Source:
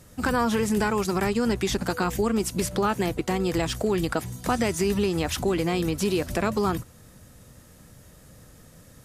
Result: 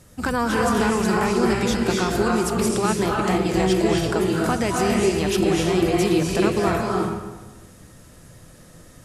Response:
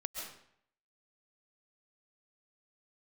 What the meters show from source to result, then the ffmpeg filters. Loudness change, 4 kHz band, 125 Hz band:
+4.5 dB, +4.0 dB, +4.5 dB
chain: -filter_complex "[1:a]atrim=start_sample=2205,asetrate=23373,aresample=44100[s0];[0:a][s0]afir=irnorm=-1:irlink=0"

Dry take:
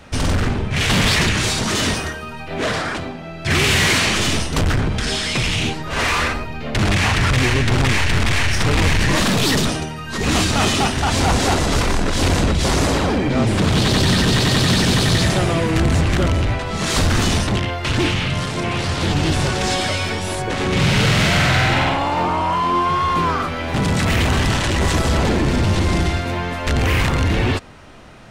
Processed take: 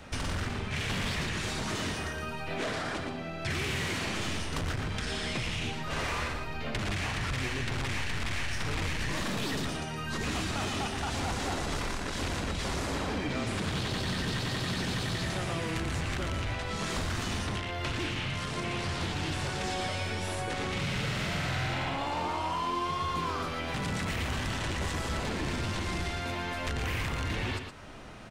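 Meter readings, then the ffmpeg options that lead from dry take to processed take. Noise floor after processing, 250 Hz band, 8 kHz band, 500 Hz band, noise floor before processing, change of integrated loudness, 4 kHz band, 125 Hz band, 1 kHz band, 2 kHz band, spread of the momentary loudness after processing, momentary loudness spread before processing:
-37 dBFS, -15.5 dB, -15.5 dB, -14.5 dB, -30 dBFS, -14.5 dB, -14.5 dB, -15.5 dB, -13.5 dB, -13.5 dB, 3 LU, 7 LU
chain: -filter_complex "[0:a]acrossover=split=930|2700[s0][s1][s2];[s0]acompressor=threshold=0.0316:ratio=4[s3];[s1]acompressor=threshold=0.0178:ratio=4[s4];[s2]acompressor=threshold=0.0126:ratio=4[s5];[s3][s4][s5]amix=inputs=3:normalize=0,aecho=1:1:117:0.422,volume=0.562"

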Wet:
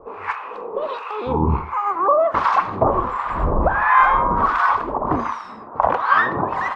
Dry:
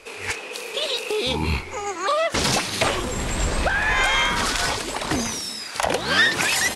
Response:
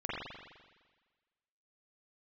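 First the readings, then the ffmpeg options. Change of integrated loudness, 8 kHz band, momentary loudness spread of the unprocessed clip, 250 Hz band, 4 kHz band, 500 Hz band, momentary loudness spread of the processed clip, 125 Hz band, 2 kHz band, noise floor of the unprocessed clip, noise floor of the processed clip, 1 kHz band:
+3.0 dB, under -25 dB, 10 LU, +2.5 dB, under -15 dB, +4.0 dB, 12 LU, +3.0 dB, -1.5 dB, -35 dBFS, -35 dBFS, +9.5 dB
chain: -filter_complex "[0:a]lowpass=f=1100:t=q:w=5.2,acrossover=split=850[s0][s1];[s0]aeval=exprs='val(0)*(1-1/2+1/2*cos(2*PI*1.4*n/s))':c=same[s2];[s1]aeval=exprs='val(0)*(1-1/2-1/2*cos(2*PI*1.4*n/s))':c=same[s3];[s2][s3]amix=inputs=2:normalize=0,asplit=2[s4][s5];[1:a]atrim=start_sample=2205,afade=t=out:st=0.2:d=0.01,atrim=end_sample=9261[s6];[s5][s6]afir=irnorm=-1:irlink=0,volume=0.141[s7];[s4][s7]amix=inputs=2:normalize=0,volume=1.78"

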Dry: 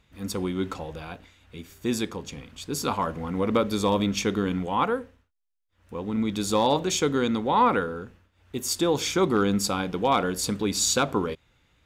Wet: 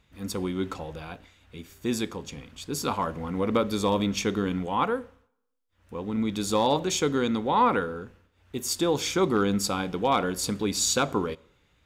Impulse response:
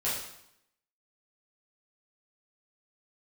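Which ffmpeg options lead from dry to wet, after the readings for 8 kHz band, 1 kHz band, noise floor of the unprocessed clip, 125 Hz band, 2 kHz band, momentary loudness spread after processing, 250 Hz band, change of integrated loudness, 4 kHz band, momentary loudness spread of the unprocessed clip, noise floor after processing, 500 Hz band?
-1.5 dB, -1.0 dB, -68 dBFS, -1.5 dB, -1.5 dB, 16 LU, -1.5 dB, -1.0 dB, -1.5 dB, 16 LU, -68 dBFS, -1.0 dB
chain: -filter_complex "[0:a]asplit=2[s0][s1];[1:a]atrim=start_sample=2205[s2];[s1][s2]afir=irnorm=-1:irlink=0,volume=0.0355[s3];[s0][s3]amix=inputs=2:normalize=0,volume=0.841"

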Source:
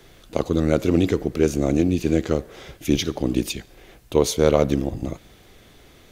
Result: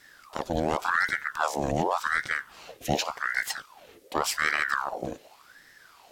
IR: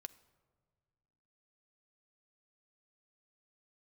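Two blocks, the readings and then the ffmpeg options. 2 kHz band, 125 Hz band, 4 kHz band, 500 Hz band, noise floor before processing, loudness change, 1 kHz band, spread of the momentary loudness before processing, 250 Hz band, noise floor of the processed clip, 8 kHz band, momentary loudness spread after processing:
+10.0 dB, -14.0 dB, -3.5 dB, -11.5 dB, -51 dBFS, -6.5 dB, +5.5 dB, 13 LU, -15.0 dB, -56 dBFS, -4.0 dB, 12 LU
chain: -af "equalizer=f=570:t=o:w=1.7:g=-12,aeval=exprs='val(0)*sin(2*PI*1100*n/s+1100*0.65/0.88*sin(2*PI*0.88*n/s))':c=same"

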